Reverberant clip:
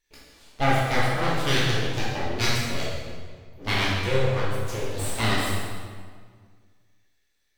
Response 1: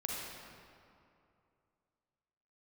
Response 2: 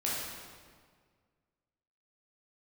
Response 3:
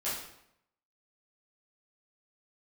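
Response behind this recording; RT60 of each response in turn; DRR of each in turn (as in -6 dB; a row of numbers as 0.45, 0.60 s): 2; 2.6, 1.8, 0.75 s; -3.0, -7.0, -10.5 dB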